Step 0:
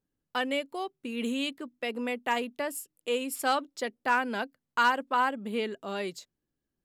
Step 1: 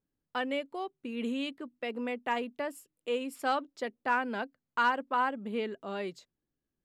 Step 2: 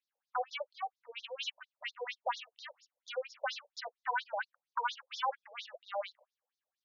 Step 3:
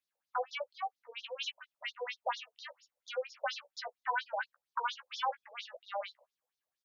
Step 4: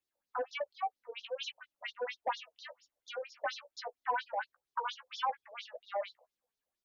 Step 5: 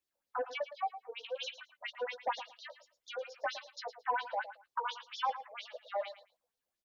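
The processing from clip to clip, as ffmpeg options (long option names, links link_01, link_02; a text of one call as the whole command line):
ffmpeg -i in.wav -af "lowpass=frequency=2500:poles=1,volume=-2dB" out.wav
ffmpeg -i in.wav -filter_complex "[0:a]acrossover=split=240[link_01][link_02];[link_02]asoftclip=type=tanh:threshold=-34dB[link_03];[link_01][link_03]amix=inputs=2:normalize=0,afftfilt=real='re*between(b*sr/1024,630*pow(5000/630,0.5+0.5*sin(2*PI*4.3*pts/sr))/1.41,630*pow(5000/630,0.5+0.5*sin(2*PI*4.3*pts/sr))*1.41)':imag='im*between(b*sr/1024,630*pow(5000/630,0.5+0.5*sin(2*PI*4.3*pts/sr))/1.41,630*pow(5000/630,0.5+0.5*sin(2*PI*4.3*pts/sr))*1.41)':win_size=1024:overlap=0.75,volume=8.5dB" out.wav
ffmpeg -i in.wav -filter_complex "[0:a]asplit=2[link_01][link_02];[link_02]adelay=14,volume=-8.5dB[link_03];[link_01][link_03]amix=inputs=2:normalize=0" out.wav
ffmpeg -i in.wav -filter_complex "[0:a]flanger=delay=2.2:depth=2.5:regen=-29:speed=1.3:shape=triangular,acrossover=split=670|2100[link_01][link_02][link_03];[link_01]aeval=exprs='0.0211*sin(PI/2*1.58*val(0)/0.0211)':channel_layout=same[link_04];[link_04][link_02][link_03]amix=inputs=3:normalize=0,volume=1.5dB" out.wav
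ffmpeg -i in.wav -af "aecho=1:1:111|222:0.224|0.0448" out.wav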